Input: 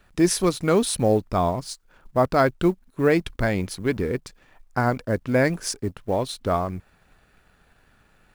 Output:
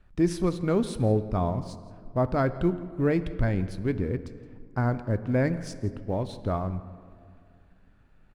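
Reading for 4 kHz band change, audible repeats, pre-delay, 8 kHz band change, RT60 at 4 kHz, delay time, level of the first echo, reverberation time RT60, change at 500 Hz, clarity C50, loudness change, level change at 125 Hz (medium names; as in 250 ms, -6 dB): -13.0 dB, 1, 3 ms, under -15 dB, 1.2 s, 168 ms, -20.5 dB, 2.2 s, -6.0 dB, 13.0 dB, -4.5 dB, 0.0 dB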